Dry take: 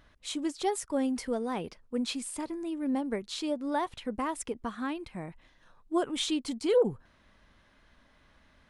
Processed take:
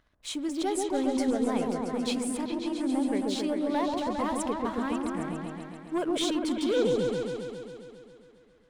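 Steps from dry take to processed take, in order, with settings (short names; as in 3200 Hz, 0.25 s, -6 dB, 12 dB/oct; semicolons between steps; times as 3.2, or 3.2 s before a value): sample leveller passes 2; on a send: repeats that get brighter 0.135 s, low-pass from 750 Hz, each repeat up 1 oct, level 0 dB; on the sum: gain -6.5 dB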